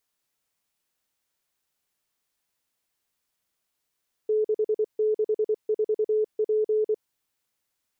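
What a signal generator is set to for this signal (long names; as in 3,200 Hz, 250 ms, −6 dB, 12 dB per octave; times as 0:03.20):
Morse code "664P" 24 words per minute 430 Hz −20 dBFS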